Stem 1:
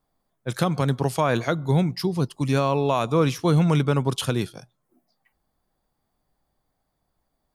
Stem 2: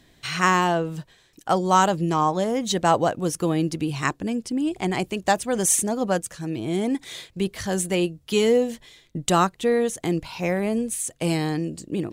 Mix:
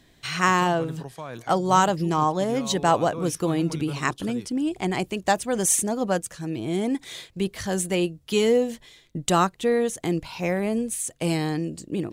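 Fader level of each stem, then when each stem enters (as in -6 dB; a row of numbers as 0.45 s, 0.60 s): -15.0 dB, -1.0 dB; 0.00 s, 0.00 s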